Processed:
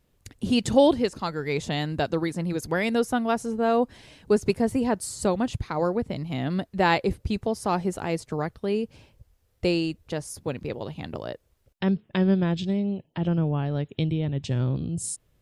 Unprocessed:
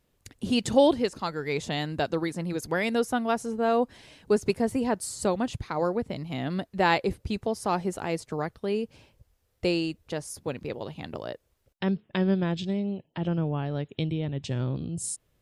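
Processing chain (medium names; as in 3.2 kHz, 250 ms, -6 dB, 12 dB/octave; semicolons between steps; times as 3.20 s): bass shelf 190 Hz +5 dB; trim +1 dB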